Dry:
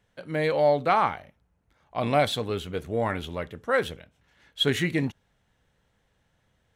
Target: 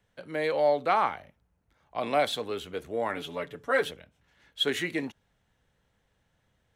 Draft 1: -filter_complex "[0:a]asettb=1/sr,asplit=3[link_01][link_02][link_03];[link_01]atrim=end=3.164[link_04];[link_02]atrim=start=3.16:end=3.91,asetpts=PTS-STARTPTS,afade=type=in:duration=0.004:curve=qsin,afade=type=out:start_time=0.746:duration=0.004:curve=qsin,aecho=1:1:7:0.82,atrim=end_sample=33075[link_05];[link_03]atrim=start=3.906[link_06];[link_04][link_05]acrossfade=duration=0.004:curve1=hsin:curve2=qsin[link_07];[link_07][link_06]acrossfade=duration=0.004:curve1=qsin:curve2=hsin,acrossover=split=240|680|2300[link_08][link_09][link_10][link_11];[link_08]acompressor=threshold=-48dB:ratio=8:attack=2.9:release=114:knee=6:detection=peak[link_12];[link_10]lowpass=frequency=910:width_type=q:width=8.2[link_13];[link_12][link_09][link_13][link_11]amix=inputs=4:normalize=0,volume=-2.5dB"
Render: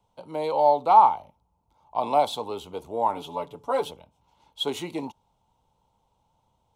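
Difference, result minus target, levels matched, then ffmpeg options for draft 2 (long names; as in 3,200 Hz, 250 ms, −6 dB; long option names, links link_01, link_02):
1,000 Hz band +4.5 dB
-filter_complex "[0:a]asettb=1/sr,asplit=3[link_01][link_02][link_03];[link_01]atrim=end=3.164[link_04];[link_02]atrim=start=3.16:end=3.91,asetpts=PTS-STARTPTS,afade=type=in:duration=0.004:curve=qsin,afade=type=out:start_time=0.746:duration=0.004:curve=qsin,aecho=1:1:7:0.82,atrim=end_sample=33075[link_05];[link_03]atrim=start=3.906[link_06];[link_04][link_05]acrossfade=duration=0.004:curve1=hsin:curve2=qsin[link_07];[link_07][link_06]acrossfade=duration=0.004:curve1=qsin:curve2=hsin,acrossover=split=240|680|2300[link_08][link_09][link_10][link_11];[link_08]acompressor=threshold=-48dB:ratio=8:attack=2.9:release=114:knee=6:detection=peak[link_12];[link_12][link_09][link_10][link_11]amix=inputs=4:normalize=0,volume=-2.5dB"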